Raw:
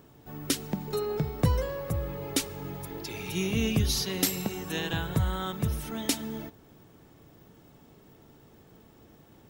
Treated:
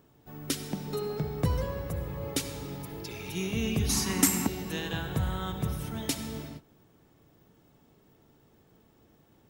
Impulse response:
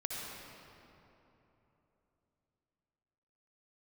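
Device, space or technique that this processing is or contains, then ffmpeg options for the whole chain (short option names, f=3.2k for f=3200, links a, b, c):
keyed gated reverb: -filter_complex "[0:a]asplit=3[a][b][c];[1:a]atrim=start_sample=2205[d];[b][d]afir=irnorm=-1:irlink=0[e];[c]apad=whole_len=418886[f];[e][f]sidechaingate=range=-33dB:threshold=-49dB:ratio=16:detection=peak,volume=-4.5dB[g];[a][g]amix=inputs=2:normalize=0,asettb=1/sr,asplit=3[h][i][j];[h]atrim=end=3.894[k];[i]atrim=start=3.89:end=4.47,asetpts=PTS-STARTPTS,afade=t=in:d=0.004:c=qsin,afade=t=out:st=0.576:d=0.004:c=qsin,equalizer=f=125:t=o:w=1:g=-6,equalizer=f=250:t=o:w=1:g=12,equalizer=f=500:t=o:w=1:g=-8,equalizer=f=1k:t=o:w=1:g=12,equalizer=f=2k:t=o:w=1:g=5,equalizer=f=4k:t=o:w=1:g=-7,equalizer=f=8k:t=o:w=1:g=12[l];[j]atrim=start=4.466[m];[k][l]acrossfade=d=0.004:c1=hsin:c2=qsin[n];[n][m]acrossfade=d=0.004:c1=qsin:c2=hsin,volume=-6.5dB"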